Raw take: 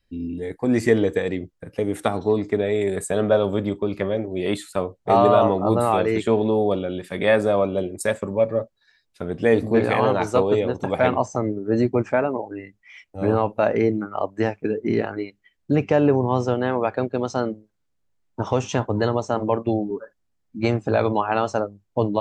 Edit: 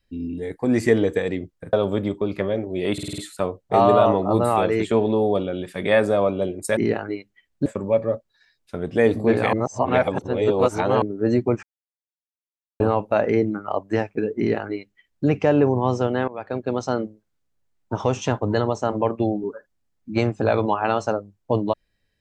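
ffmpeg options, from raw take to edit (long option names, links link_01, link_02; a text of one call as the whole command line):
ffmpeg -i in.wav -filter_complex "[0:a]asplit=14[link_01][link_02][link_03][link_04][link_05][link_06][link_07][link_08][link_09][link_10][link_11][link_12][link_13][link_14];[link_01]atrim=end=1.732[link_15];[link_02]atrim=start=3.338:end=4.592[link_16];[link_03]atrim=start=4.538:end=4.592[link_17];[link_04]atrim=start=4.538:end=4.592[link_18];[link_05]atrim=start=4.538:end=4.592[link_19];[link_06]atrim=start=4.538:end=4.592[link_20];[link_07]atrim=start=4.538:end=8.132[link_21];[link_08]atrim=start=14.848:end=15.742[link_22];[link_09]atrim=start=8.128:end=10.002[link_23];[link_10]atrim=start=9.998:end=11.492,asetpts=PTS-STARTPTS,areverse[link_24];[link_11]atrim=start=11.488:end=12.1,asetpts=PTS-STARTPTS,afade=type=out:start_time=0.608:duration=0.004:curve=hsin[link_25];[link_12]atrim=start=12.1:end=13.27,asetpts=PTS-STARTPTS,volume=0[link_26];[link_13]atrim=start=13.27:end=16.75,asetpts=PTS-STARTPTS,afade=type=in:duration=0.004:curve=hsin,afade=type=out:start_time=3.476:duration=0.004:curve=hsin:silence=0.1[link_27];[link_14]atrim=start=16.75,asetpts=PTS-STARTPTS,afade=type=in:duration=0.43:silence=0.1[link_28];[link_15][link_16]acrossfade=duration=0.004:curve1=hsin:curve2=hsin[link_29];[link_29][link_17]acrossfade=duration=0.004:curve1=hsin:curve2=hsin[link_30];[link_30][link_18]acrossfade=duration=0.004:curve1=hsin:curve2=hsin[link_31];[link_31][link_19]acrossfade=duration=0.004:curve1=hsin:curve2=hsin[link_32];[link_32][link_20]acrossfade=duration=0.004:curve1=hsin:curve2=hsin[link_33];[link_33][link_21]acrossfade=duration=0.004:curve1=hsin:curve2=hsin[link_34];[link_34][link_22]acrossfade=duration=0.004:curve1=hsin:curve2=hsin[link_35];[link_35][link_23]acrossfade=duration=0.004:curve1=hsin:curve2=hsin[link_36];[link_36][link_24]acrossfade=duration=0.004:curve1=hsin:curve2=hsin[link_37];[link_25][link_26][link_27][link_28]concat=n=4:v=0:a=1[link_38];[link_37][link_38]acrossfade=duration=0.004:curve1=hsin:curve2=hsin" out.wav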